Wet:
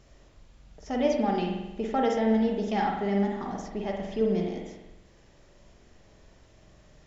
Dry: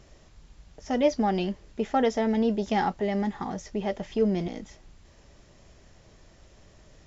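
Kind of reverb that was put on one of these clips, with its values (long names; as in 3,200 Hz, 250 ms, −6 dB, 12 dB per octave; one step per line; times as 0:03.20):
spring reverb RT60 1 s, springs 45 ms, chirp 20 ms, DRR 0.5 dB
level −4 dB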